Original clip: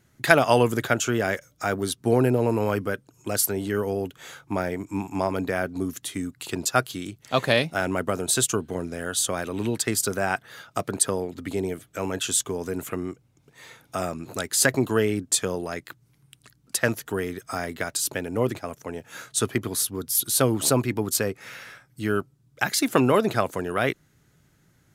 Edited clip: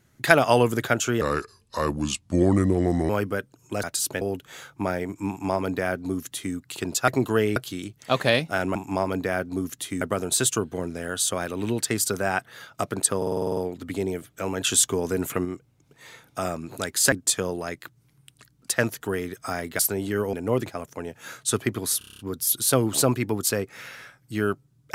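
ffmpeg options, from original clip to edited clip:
-filter_complex "[0:a]asplit=29[a][b][c][d][e][f][g][h][i][j][k][l][m][n][o][p][q][r][s][t][u][v][w][x][y][z][aa][ab][ac];[a]atrim=end=1.214[ad];[b]atrim=start=1.21:end=2.64,asetpts=PTS-STARTPTS,asetrate=33516,aresample=44100[ae];[c]atrim=start=2.636:end=3.382[af];[d]atrim=start=17.838:end=18.222[ag];[e]atrim=start=3.918:end=6.792[ah];[f]atrim=start=14.688:end=15.172[ai];[g]atrim=start=6.788:end=7.982[aj];[h]atrim=start=4.988:end=6.252[ak];[i]atrim=start=7.978:end=11.192[al];[j]atrim=start=11.138:end=11.192[am];[k]atrim=start=11.138:end=11.192[an];[l]atrim=start=11.138:end=11.192[ao];[m]atrim=start=11.138:end=11.192[ap];[n]atrim=start=11.138:end=11.192[aq];[o]atrim=start=11.138:end=11.192[ar];[p]atrim=start=11.138:end=11.192[as];[q]atrim=start=11.138:end=12.182[at];[r]atrim=start=12.178:end=13.022,asetpts=PTS-STARTPTS,volume=4dB[au];[s]atrim=start=13.018:end=14.692[av];[t]atrim=start=15.168:end=17.842[aw];[u]atrim=start=3.378:end=3.922[ax];[v]atrim=start=18.218:end=19.902[ay];[w]atrim=start=19.868:end=19.902[az];[x]atrim=start=19.868:end=19.902[ba];[y]atrim=start=19.868:end=19.902[bb];[z]atrim=start=19.868:end=19.902[bc];[aa]atrim=start=19.868:end=19.902[bd];[ab]atrim=start=19.868:end=19.902[be];[ac]atrim=start=19.868[bf];[ad][ae]acrossfade=d=0.004:c1=hsin:c2=hsin[bg];[bg][af]acrossfade=d=0.004:c1=hsin:c2=hsin[bh];[bh][ag]acrossfade=d=0.004:c1=hsin:c2=hsin[bi];[bi][ah]acrossfade=d=0.004:c1=hsin:c2=hsin[bj];[bj][ai]acrossfade=d=0.004:c1=hsin:c2=hsin[bk];[bk][aj]acrossfade=d=0.004:c1=hsin:c2=hsin[bl];[bl][ak]acrossfade=d=0.004:c1=hsin:c2=hsin[bm];[bm][al]acrossfade=d=0.004:c1=hsin:c2=hsin[bn];[bn][am]acrossfade=d=0.004:c1=hsin:c2=hsin[bo];[bo][an]acrossfade=d=0.004:c1=hsin:c2=hsin[bp];[bp][ao]acrossfade=d=0.004:c1=hsin:c2=hsin[bq];[bq][ap]acrossfade=d=0.004:c1=hsin:c2=hsin[br];[br][aq]acrossfade=d=0.004:c1=hsin:c2=hsin[bs];[bs][ar]acrossfade=d=0.004:c1=hsin:c2=hsin[bt];[bt][as]acrossfade=d=0.004:c1=hsin:c2=hsin[bu];[bu][at]acrossfade=d=0.004:c1=hsin:c2=hsin[bv];[bv][au]acrossfade=d=0.004:c1=hsin:c2=hsin[bw];[bw][av]acrossfade=d=0.004:c1=hsin:c2=hsin[bx];[bx][aw]acrossfade=d=0.004:c1=hsin:c2=hsin[by];[by][ax]acrossfade=d=0.004:c1=hsin:c2=hsin[bz];[bz][ay]acrossfade=d=0.004:c1=hsin:c2=hsin[ca];[ca][az]acrossfade=d=0.004:c1=hsin:c2=hsin[cb];[cb][ba]acrossfade=d=0.004:c1=hsin:c2=hsin[cc];[cc][bb]acrossfade=d=0.004:c1=hsin:c2=hsin[cd];[cd][bc]acrossfade=d=0.004:c1=hsin:c2=hsin[ce];[ce][bd]acrossfade=d=0.004:c1=hsin:c2=hsin[cf];[cf][be]acrossfade=d=0.004:c1=hsin:c2=hsin[cg];[cg][bf]acrossfade=d=0.004:c1=hsin:c2=hsin"

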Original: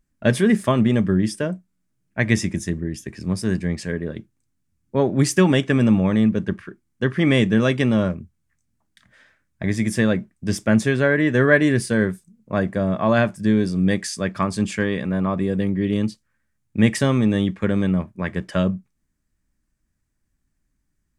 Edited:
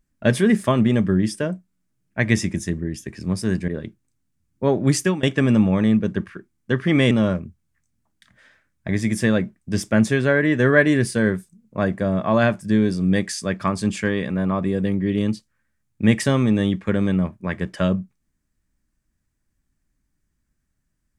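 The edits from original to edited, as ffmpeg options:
-filter_complex "[0:a]asplit=4[a][b][c][d];[a]atrim=end=3.682[e];[b]atrim=start=3.998:end=5.55,asetpts=PTS-STARTPTS,afade=t=out:st=1.302:d=0.25:silence=0.0794328[f];[c]atrim=start=5.55:end=7.432,asetpts=PTS-STARTPTS,afade=t=in:d=0.004:c=hsin:silence=0.0794328[g];[d]atrim=start=7.858[h];[f][g]concat=n=2:v=0:a=1[i];[e][i]acrossfade=d=0.004:c1=hsin:c2=hsin[j];[j][h]acrossfade=d=0.004:c1=hsin:c2=hsin"

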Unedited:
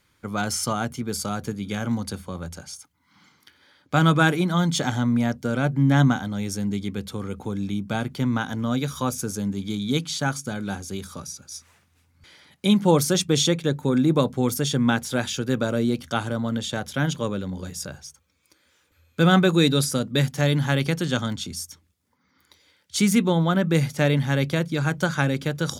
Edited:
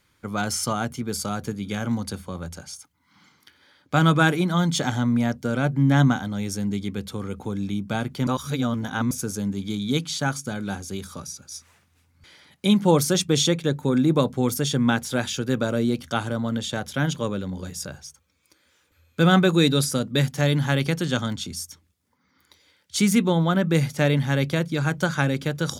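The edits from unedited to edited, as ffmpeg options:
-filter_complex "[0:a]asplit=3[a][b][c];[a]atrim=end=8.272[d];[b]atrim=start=8.268:end=9.112,asetpts=PTS-STARTPTS,areverse[e];[c]atrim=start=9.108[f];[d][e]acrossfade=d=0.004:c1=hsin:c2=hsin[g];[g][f]acrossfade=d=0.004:c1=hsin:c2=hsin"

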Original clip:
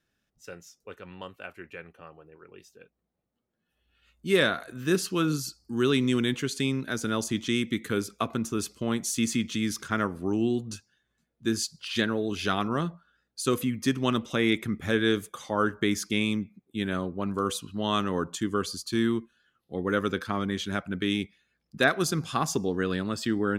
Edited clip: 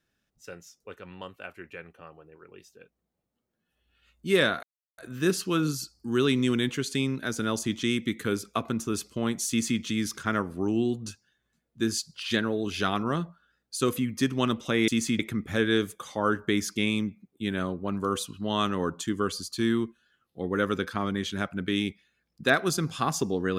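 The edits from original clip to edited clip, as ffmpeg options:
-filter_complex "[0:a]asplit=4[a][b][c][d];[a]atrim=end=4.63,asetpts=PTS-STARTPTS,afade=t=out:st=4.626:d=0.004:c=hsin,apad=pad_dur=0.35[e];[b]atrim=start=4.63:end=14.532,asetpts=PTS-STARTPTS,afade=t=in:d=0.004:c=hsin[f];[c]atrim=start=9.138:end=9.452[g];[d]atrim=start=14.528[h];[e][f]concat=n=2:v=0:a=1[i];[i][g]acrossfade=d=0.004:c1=hsin:c2=hsin[j];[j][h]acrossfade=d=0.004:c1=hsin:c2=hsin"

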